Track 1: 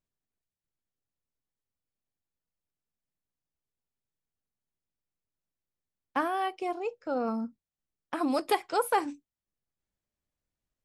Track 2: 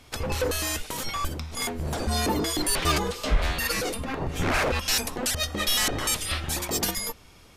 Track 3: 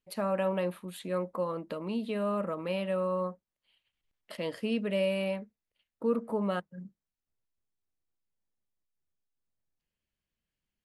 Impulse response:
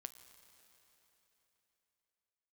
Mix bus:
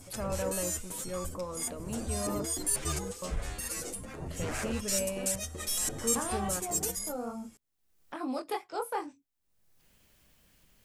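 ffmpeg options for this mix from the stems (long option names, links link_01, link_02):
-filter_complex "[0:a]acontrast=89,flanger=delay=19:depth=5.5:speed=2.3,volume=-11dB[link_01];[1:a]equalizer=frequency=125:width_type=o:width=1:gain=3,equalizer=frequency=1000:width_type=o:width=1:gain=-4,equalizer=frequency=4000:width_type=o:width=1:gain=-6,equalizer=frequency=8000:width_type=o:width=1:gain=12,asplit=2[link_02][link_03];[link_03]adelay=8.2,afreqshift=2.3[link_04];[link_02][link_04]amix=inputs=2:normalize=1,volume=-9dB,asplit=2[link_05][link_06];[link_06]volume=-7dB[link_07];[2:a]highshelf=frequency=8000:gain=7.5,volume=-5.5dB,asplit=3[link_08][link_09][link_10];[link_08]atrim=end=2.43,asetpts=PTS-STARTPTS,afade=type=out:start_time=2.426:duration=0.004:curve=hsin[link_11];[link_09]atrim=start=2.43:end=3.22,asetpts=PTS-STARTPTS,volume=0[link_12];[link_10]atrim=start=3.22,asetpts=PTS-STARTPTS,afade=type=in:duration=0.004:curve=hsin[link_13];[link_11][link_12][link_13]concat=n=3:v=0:a=1[link_14];[3:a]atrim=start_sample=2205[link_15];[link_07][link_15]afir=irnorm=-1:irlink=0[link_16];[link_01][link_05][link_14][link_16]amix=inputs=4:normalize=0,adynamicequalizer=threshold=0.00251:dfrequency=2600:dqfactor=0.81:tfrequency=2600:tqfactor=0.81:attack=5:release=100:ratio=0.375:range=2:mode=cutabove:tftype=bell,acompressor=mode=upward:threshold=-42dB:ratio=2.5"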